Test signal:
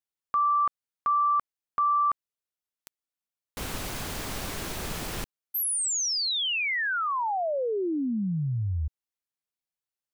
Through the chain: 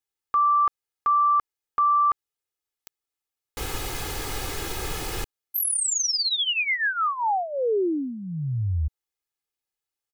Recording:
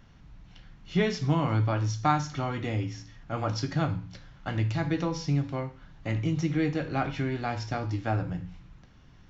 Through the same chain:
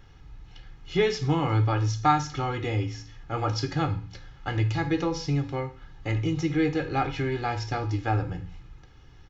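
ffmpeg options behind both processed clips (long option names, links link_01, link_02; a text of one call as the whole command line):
ffmpeg -i in.wav -af "aecho=1:1:2.4:0.64,volume=1.5dB" out.wav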